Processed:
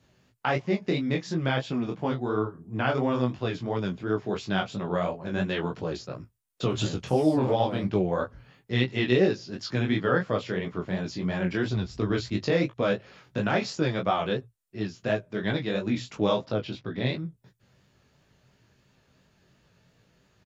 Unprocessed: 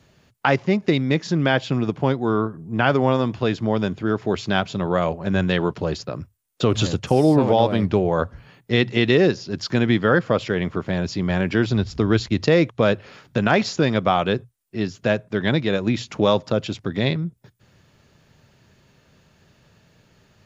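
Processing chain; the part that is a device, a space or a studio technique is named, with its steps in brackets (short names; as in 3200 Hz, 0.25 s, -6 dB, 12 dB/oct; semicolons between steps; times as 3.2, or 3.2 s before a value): 16.42–17.05 LPF 5200 Hz 24 dB/oct; double-tracked vocal (doubler 16 ms -7 dB; chorus 2.9 Hz, delay 18.5 ms, depth 5.7 ms); gain -5 dB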